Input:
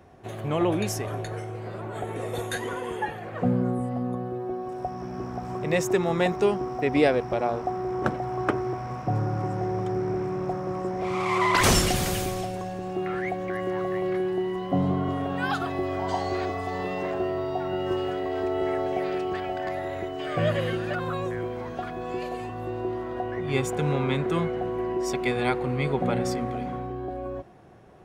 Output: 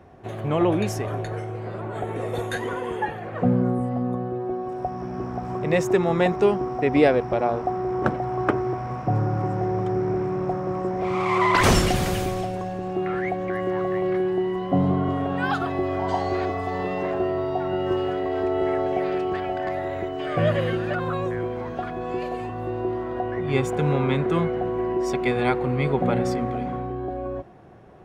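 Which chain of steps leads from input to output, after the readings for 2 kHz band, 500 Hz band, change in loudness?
+2.0 dB, +3.5 dB, +3.0 dB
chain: treble shelf 3.9 kHz -9 dB; trim +3.5 dB

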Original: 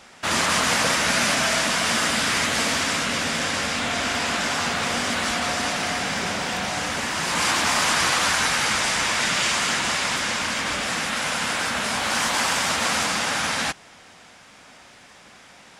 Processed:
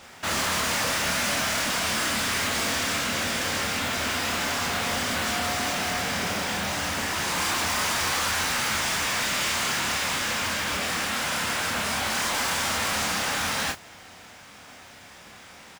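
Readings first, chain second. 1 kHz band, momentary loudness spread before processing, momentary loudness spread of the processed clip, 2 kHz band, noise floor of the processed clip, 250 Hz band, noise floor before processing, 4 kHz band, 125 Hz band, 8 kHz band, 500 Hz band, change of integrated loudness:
-4.0 dB, 5 LU, 3 LU, -4.0 dB, -47 dBFS, -3.5 dB, -49 dBFS, -3.5 dB, -1.5 dB, -3.0 dB, -3.5 dB, -3.5 dB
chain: peaking EQ 86 Hz +13.5 dB 0.23 oct; modulation noise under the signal 14 dB; saturation -24 dBFS, distortion -10 dB; doubling 28 ms -5.5 dB

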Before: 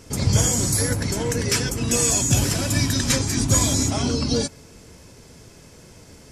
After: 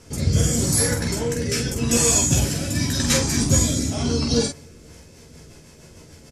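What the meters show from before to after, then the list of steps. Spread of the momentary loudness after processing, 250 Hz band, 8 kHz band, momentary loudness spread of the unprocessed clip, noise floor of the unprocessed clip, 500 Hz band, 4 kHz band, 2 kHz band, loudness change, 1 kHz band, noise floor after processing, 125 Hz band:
7 LU, +1.0 dB, 0.0 dB, 6 LU, -47 dBFS, +1.5 dB, 0.0 dB, -0.5 dB, +0.5 dB, -2.0 dB, -47 dBFS, 0.0 dB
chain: rotary cabinet horn 0.85 Hz, later 6.7 Hz, at 4.52 s; early reflections 13 ms -4.5 dB, 47 ms -4 dB

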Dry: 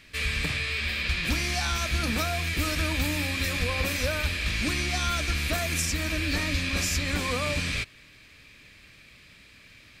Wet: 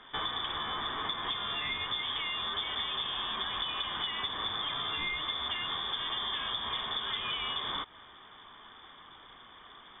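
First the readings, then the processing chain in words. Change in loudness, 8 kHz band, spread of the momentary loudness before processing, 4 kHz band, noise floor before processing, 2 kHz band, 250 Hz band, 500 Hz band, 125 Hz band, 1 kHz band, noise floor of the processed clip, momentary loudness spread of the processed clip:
-5.5 dB, under -40 dB, 1 LU, +0.5 dB, -53 dBFS, -10.0 dB, -17.0 dB, -12.5 dB, -22.0 dB, -0.5 dB, -53 dBFS, 19 LU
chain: small resonant body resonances 450/1400 Hz, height 7 dB; frequency inversion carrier 3.5 kHz; compression 6:1, threshold -32 dBFS, peak gain reduction 11 dB

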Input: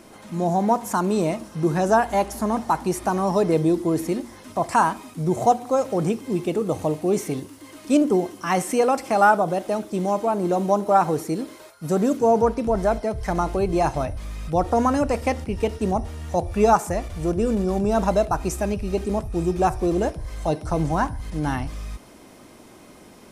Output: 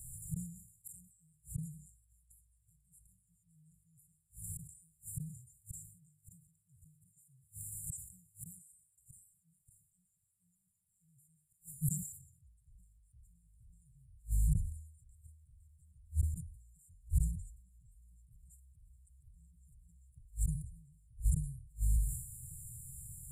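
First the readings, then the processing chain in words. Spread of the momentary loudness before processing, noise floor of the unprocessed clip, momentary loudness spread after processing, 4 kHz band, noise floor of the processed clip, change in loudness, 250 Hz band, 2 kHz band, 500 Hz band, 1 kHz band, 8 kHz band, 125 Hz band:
9 LU, -47 dBFS, 20 LU, under -40 dB, -78 dBFS, -17.5 dB, -28.0 dB, under -40 dB, under -40 dB, under -40 dB, -9.5 dB, -12.0 dB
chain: hum notches 50/100/150 Hz; on a send: feedback echo behind a band-pass 572 ms, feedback 36%, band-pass 480 Hz, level -15 dB; on the sum: inverted gate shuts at -23 dBFS, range -37 dB; brick-wall FIR band-stop 150–7000 Hz; decay stretcher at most 77 dB/s; trim +8.5 dB

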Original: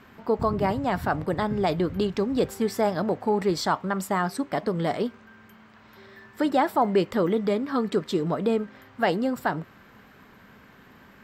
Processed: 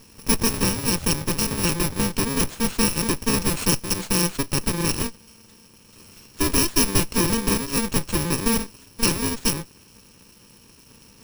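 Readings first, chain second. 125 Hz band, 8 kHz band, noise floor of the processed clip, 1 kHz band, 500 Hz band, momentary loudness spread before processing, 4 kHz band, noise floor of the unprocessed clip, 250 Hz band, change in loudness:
+5.0 dB, +21.5 dB, -52 dBFS, -4.0 dB, -5.0 dB, 6 LU, +12.0 dB, -53 dBFS, +1.5 dB, +3.5 dB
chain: bit-reversed sample order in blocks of 64 samples; treble shelf 9.8 kHz +7.5 dB; sliding maximum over 3 samples

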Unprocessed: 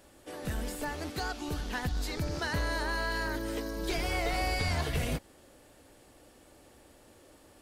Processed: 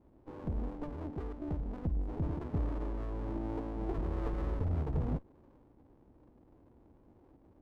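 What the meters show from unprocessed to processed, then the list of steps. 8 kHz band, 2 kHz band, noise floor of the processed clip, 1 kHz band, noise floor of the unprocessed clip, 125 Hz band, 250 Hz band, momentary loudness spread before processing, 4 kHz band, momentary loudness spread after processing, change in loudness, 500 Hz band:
under -30 dB, -23.0 dB, -63 dBFS, -10.5 dB, -59 dBFS, 0.0 dB, -1.0 dB, 6 LU, under -25 dB, 7 LU, -4.0 dB, -5.5 dB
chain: inverse Chebyshev low-pass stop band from 1.2 kHz, stop band 40 dB; level-controlled noise filter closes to 440 Hz, open at -30 dBFS; sliding maximum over 33 samples

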